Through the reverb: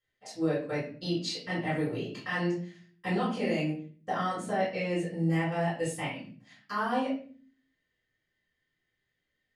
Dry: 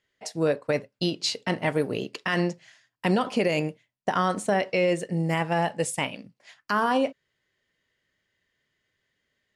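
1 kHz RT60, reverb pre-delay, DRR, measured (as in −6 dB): 0.40 s, 3 ms, −10.5 dB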